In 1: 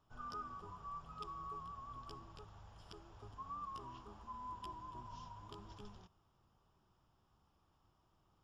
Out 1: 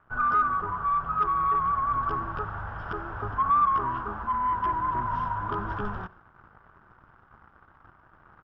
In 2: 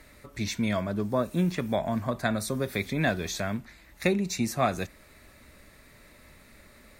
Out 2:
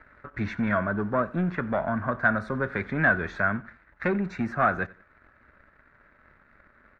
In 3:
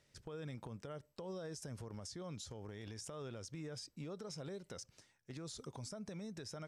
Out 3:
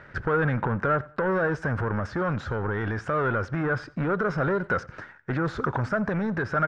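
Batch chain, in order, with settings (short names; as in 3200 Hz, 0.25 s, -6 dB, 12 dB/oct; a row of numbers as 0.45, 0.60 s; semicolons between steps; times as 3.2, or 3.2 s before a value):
sample leveller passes 2; vocal rider within 4 dB 2 s; synth low-pass 1500 Hz, resonance Q 5.3; feedback echo 90 ms, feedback 33%, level -22 dB; match loudness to -27 LUFS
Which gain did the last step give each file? +10.5, -7.0, +16.0 dB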